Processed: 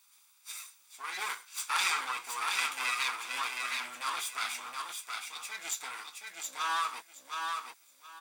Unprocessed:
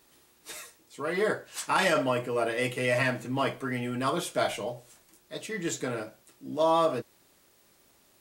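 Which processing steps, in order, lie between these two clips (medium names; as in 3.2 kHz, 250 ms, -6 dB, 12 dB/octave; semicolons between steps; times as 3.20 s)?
comb filter that takes the minimum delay 0.84 ms; high-pass 1.2 kHz 12 dB/octave; peaking EQ 8 kHz +4 dB 1.6 oct; on a send: feedback delay 721 ms, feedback 20%, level -4 dB; on the sum: trim -1.5 dB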